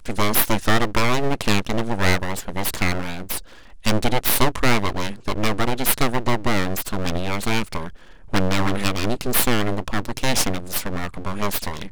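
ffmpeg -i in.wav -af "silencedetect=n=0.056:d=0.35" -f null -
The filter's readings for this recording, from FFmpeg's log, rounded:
silence_start: 3.38
silence_end: 3.85 | silence_duration: 0.47
silence_start: 7.88
silence_end: 8.33 | silence_duration: 0.45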